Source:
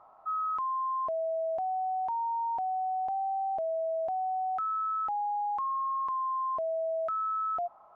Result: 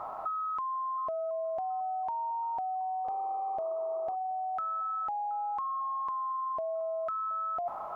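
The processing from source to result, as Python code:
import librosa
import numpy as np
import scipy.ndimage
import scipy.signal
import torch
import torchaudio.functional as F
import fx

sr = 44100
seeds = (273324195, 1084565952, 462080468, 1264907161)

y = fx.over_compress(x, sr, threshold_db=-41.0, ratio=-1.0)
y = fx.spec_paint(y, sr, seeds[0], shape='noise', start_s=3.04, length_s=1.12, low_hz=340.0, high_hz=1300.0, level_db=-58.0)
y = fx.echo_feedback(y, sr, ms=723, feedback_pct=46, wet_db=-20.0)
y = F.gain(torch.from_numpy(y), 7.5).numpy()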